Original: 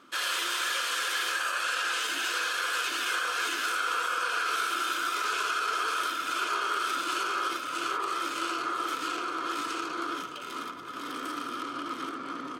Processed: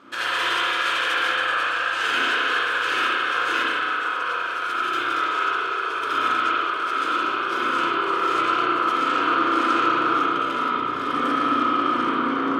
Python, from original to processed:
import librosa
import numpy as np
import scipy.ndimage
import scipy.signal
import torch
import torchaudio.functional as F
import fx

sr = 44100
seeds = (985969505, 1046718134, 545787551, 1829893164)

y = fx.delta_hold(x, sr, step_db=-49.5, at=(7.1, 8.37))
y = fx.lowpass(y, sr, hz=2600.0, slope=6)
y = fx.over_compress(y, sr, threshold_db=-34.0, ratio=-0.5)
y = fx.rev_spring(y, sr, rt60_s=2.1, pass_ms=(33, 58), chirp_ms=45, drr_db=-8.0)
y = F.gain(torch.from_numpy(y), 3.5).numpy()